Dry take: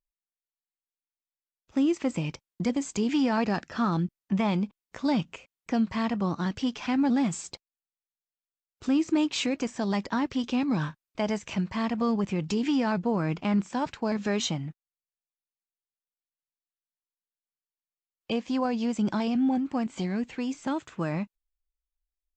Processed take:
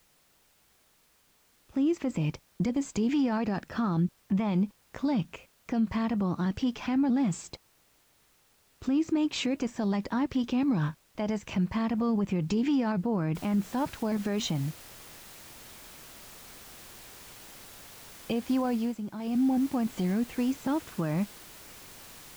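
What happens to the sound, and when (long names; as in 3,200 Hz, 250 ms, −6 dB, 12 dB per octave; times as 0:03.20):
0:13.35: noise floor change −62 dB −45 dB
0:18.66–0:19.53: duck −13.5 dB, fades 0.35 s
whole clip: spectral tilt −1.5 dB per octave; brickwall limiter −20 dBFS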